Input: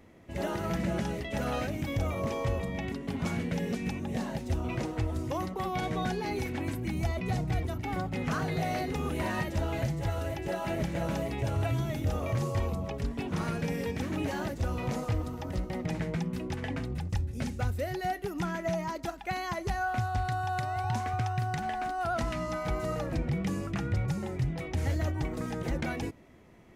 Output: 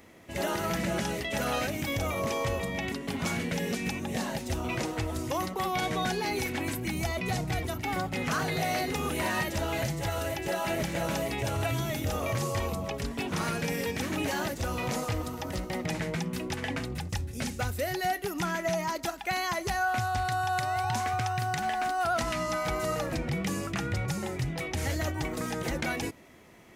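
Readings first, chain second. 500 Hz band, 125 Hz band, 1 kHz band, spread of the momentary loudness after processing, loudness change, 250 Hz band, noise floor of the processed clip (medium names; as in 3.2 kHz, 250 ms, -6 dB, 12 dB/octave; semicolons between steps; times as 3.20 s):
+2.0 dB, -2.0 dB, +3.5 dB, 4 LU, +1.5 dB, 0.0 dB, -40 dBFS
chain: tilt EQ +2 dB/octave; in parallel at -3 dB: peak limiter -27 dBFS, peak gain reduction 7 dB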